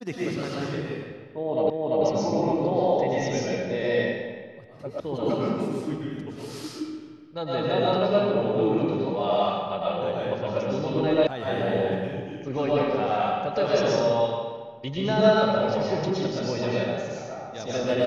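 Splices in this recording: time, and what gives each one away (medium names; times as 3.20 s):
1.70 s: repeat of the last 0.34 s
5.00 s: sound stops dead
11.27 s: sound stops dead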